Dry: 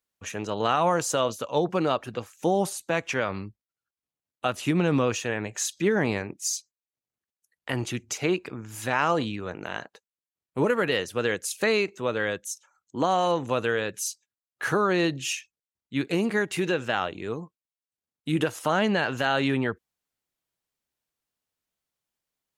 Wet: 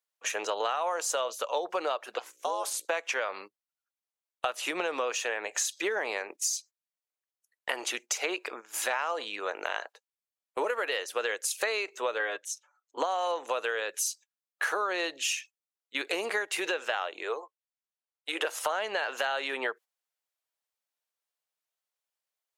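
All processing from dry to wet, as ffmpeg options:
ffmpeg -i in.wav -filter_complex "[0:a]asettb=1/sr,asplit=3[link_01][link_02][link_03];[link_01]atrim=end=2.184[link_04];[link_02]atrim=start=2.18:end=2.85,asetpts=PTS-STARTPTS,afade=type=in:duration=0.004:curve=qsin,afade=type=out:start_time=0.666:duration=0.004:curve=qsin,highpass=frequency=710:poles=1,aeval=exprs='val(0)+0.00178*(sin(2*PI*60*n/s)+sin(2*PI*2*60*n/s)/2+sin(2*PI*3*60*n/s)/3+sin(2*PI*4*60*n/s)/4+sin(2*PI*5*60*n/s)/5)':channel_layout=same,aeval=exprs='val(0)*sin(2*PI*250*n/s)':channel_layout=same[link_05];[link_03]atrim=start=2.846[link_06];[link_04][link_05]acrossfade=duration=0.004:curve1=hsin:curve2=qsin[link_07];[link_07][link_06]acrossfade=duration=0.004:curve1=qsin:curve2=hsin,asettb=1/sr,asplit=3[link_08][link_09][link_10];[link_08]atrim=end=12.194[link_11];[link_09]atrim=start=12.19:end=12.98,asetpts=PTS-STARTPTS,afade=type=in:duration=0.004:curve=qsin,afade=type=out:start_time=0.786:duration=0.004:curve=qsin,lowpass=frequency=2200:poles=1,aecho=1:1:6.9:0.66,atrim=end_sample=34839[link_12];[link_10]atrim=start=12.976[link_13];[link_11][link_12]acrossfade=duration=0.004:curve1=hsin:curve2=qsin[link_14];[link_14][link_13]acrossfade=duration=0.004:curve1=qsin:curve2=hsin,asettb=1/sr,asplit=3[link_15][link_16][link_17];[link_15]atrim=end=17.234[link_18];[link_16]atrim=start=17.23:end=18.45,asetpts=PTS-STARTPTS,afade=type=in:duration=0.004:curve=qsin,afade=type=out:start_time=1.216:duration=0.004:curve=qsin,highpass=frequency=370:width=0.5412,highpass=frequency=370:width=1.3066,highshelf=frequency=7100:gain=-10[link_19];[link_17]atrim=start=18.446[link_20];[link_18][link_19]acrossfade=duration=0.004:curve1=hsin:curve2=qsin[link_21];[link_21][link_20]acrossfade=duration=0.004:curve1=qsin:curve2=hsin,highpass=frequency=490:width=0.5412,highpass=frequency=490:width=1.3066,agate=range=-10dB:threshold=-47dB:ratio=16:detection=peak,acompressor=threshold=-34dB:ratio=6,volume=6.5dB" out.wav

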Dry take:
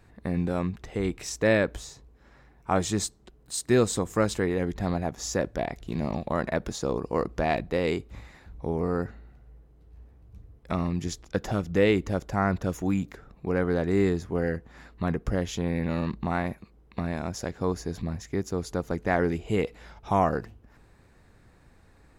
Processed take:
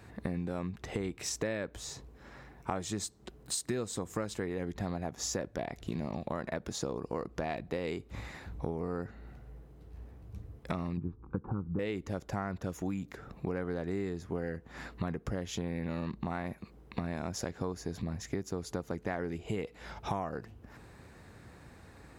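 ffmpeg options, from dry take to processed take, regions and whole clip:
ffmpeg -i in.wav -filter_complex "[0:a]asettb=1/sr,asplit=3[link_01][link_02][link_03];[link_01]atrim=end=10.974[link_04];[link_02]atrim=start=10.97:end=11.79,asetpts=PTS-STARTPTS,afade=type=in:duration=0.004:curve=qsin,afade=type=out:start_time=0.816:duration=0.004:curve=qsin,lowpass=frequency=1100:width=0.5412,lowpass=frequency=1100:width=1.3066,bandreject=frequency=700:width=12,aecho=1:1:0.8:0.9,atrim=end_sample=36162[link_05];[link_03]atrim=start=11.786[link_06];[link_04][link_05]acrossfade=duration=0.004:curve1=hsin:curve2=qsin[link_07];[link_07][link_06]acrossfade=duration=0.004:curve1=qsin:curve2=hsin,highpass=66,acompressor=threshold=-38dB:ratio=8,volume=5.5dB" out.wav

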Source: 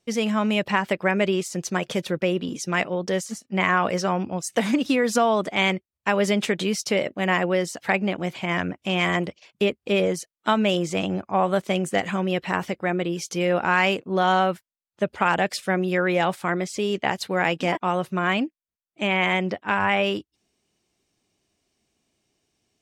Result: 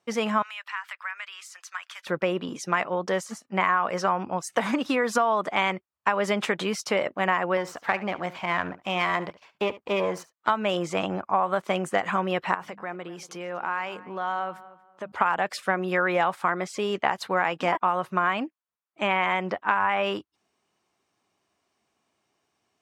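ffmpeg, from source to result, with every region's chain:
ffmpeg -i in.wav -filter_complex "[0:a]asettb=1/sr,asplit=3[link_01][link_02][link_03];[link_01]atrim=end=0.424[link_04];[link_02]atrim=start=0.42:end=2.07,asetpts=PTS-STARTPTS,afade=type=in:duration=0.004:curve=qsin,afade=type=out:start_time=1.646:duration=0.004:curve=qsin,highpass=frequency=1300:width=0.5412,highpass=frequency=1300:width=1.3066,acompressor=threshold=-40dB:ratio=2:attack=3.2:release=140:knee=1:detection=peak[link_05];[link_03]atrim=start=2.066[link_06];[link_04][link_05]acrossfade=duration=0.004:curve1=hsin:curve2=qsin[link_07];[link_07][link_06]acrossfade=duration=0.004:curve1=qsin:curve2=hsin,asettb=1/sr,asplit=3[link_08][link_09][link_10];[link_08]atrim=end=7.574[link_11];[link_09]atrim=start=7.57:end=10.5,asetpts=PTS-STARTPTS,afade=type=in:duration=0.004:curve=qsin,afade=type=out:start_time=2.926:duration=0.004:curve=qsin,aeval=exprs='if(lt(val(0),0),0.447*val(0),val(0))':channel_layout=same,equalizer=frequency=9800:width_type=o:width=0.63:gain=-4.5,aecho=1:1:71:0.126,atrim=end_sample=129213[link_12];[link_10]atrim=start=10.496[link_13];[link_11][link_12]acrossfade=duration=0.004:curve1=hsin:curve2=qsin[link_14];[link_14][link_13]acrossfade=duration=0.004:curve1=qsin:curve2=hsin,asettb=1/sr,asplit=3[link_15][link_16][link_17];[link_15]atrim=end=12.544[link_18];[link_16]atrim=start=12.54:end=15.12,asetpts=PTS-STARTPTS,afade=type=in:duration=0.004:curve=qsin,afade=type=out:start_time=2.576:duration=0.004:curve=qsin,bandreject=frequency=50:width_type=h:width=6,bandreject=frequency=100:width_type=h:width=6,bandreject=frequency=150:width_type=h:width=6,bandreject=frequency=200:width_type=h:width=6,bandreject=frequency=250:width_type=h:width=6,bandreject=frequency=300:width_type=h:width=6,acompressor=threshold=-36dB:ratio=2.5:attack=3.2:release=140:knee=1:detection=peak,asplit=2[link_19][link_20];[link_20]adelay=236,lowpass=frequency=2300:poles=1,volume=-17dB,asplit=2[link_21][link_22];[link_22]adelay=236,lowpass=frequency=2300:poles=1,volume=0.29,asplit=2[link_23][link_24];[link_24]adelay=236,lowpass=frequency=2300:poles=1,volume=0.29[link_25];[link_19][link_21][link_23][link_25]amix=inputs=4:normalize=0,atrim=end_sample=113778[link_26];[link_17]atrim=start=15.116[link_27];[link_18][link_26]acrossfade=duration=0.004:curve1=hsin:curve2=qsin[link_28];[link_28][link_27]acrossfade=duration=0.004:curve1=qsin:curve2=hsin,equalizer=frequency=1100:width_type=o:width=1.7:gain=14.5,acompressor=threshold=-13dB:ratio=6,highpass=82,volume=-6dB" out.wav

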